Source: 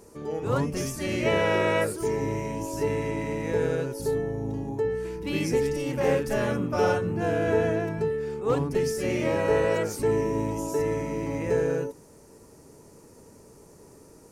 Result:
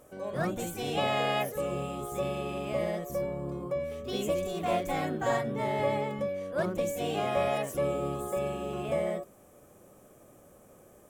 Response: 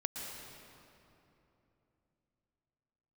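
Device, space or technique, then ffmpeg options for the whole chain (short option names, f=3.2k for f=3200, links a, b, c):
nightcore: -af "asetrate=56889,aresample=44100,volume=-5dB"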